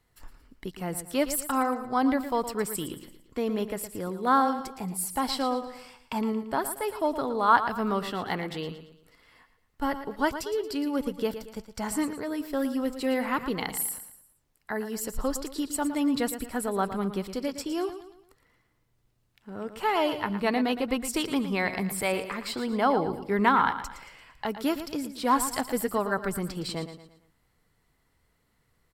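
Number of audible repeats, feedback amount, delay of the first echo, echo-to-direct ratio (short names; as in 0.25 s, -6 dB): 4, 40%, 0.114 s, -10.0 dB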